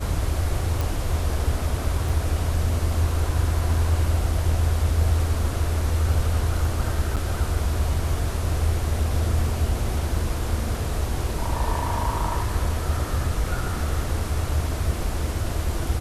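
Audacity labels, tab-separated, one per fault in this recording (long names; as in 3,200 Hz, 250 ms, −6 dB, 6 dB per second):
0.810000	0.810000	click
2.090000	2.090000	drop-out 4.6 ms
7.160000	7.170000	drop-out 7.7 ms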